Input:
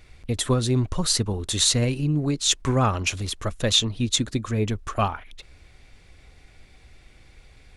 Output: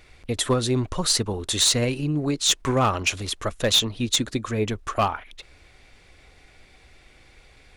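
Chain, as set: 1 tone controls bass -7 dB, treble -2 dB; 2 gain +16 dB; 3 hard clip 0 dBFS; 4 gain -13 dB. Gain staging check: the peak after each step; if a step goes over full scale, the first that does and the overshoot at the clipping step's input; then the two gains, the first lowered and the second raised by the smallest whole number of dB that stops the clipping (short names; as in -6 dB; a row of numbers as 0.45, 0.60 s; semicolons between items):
-8.0, +8.0, 0.0, -13.0 dBFS; step 2, 8.0 dB; step 2 +8 dB, step 4 -5 dB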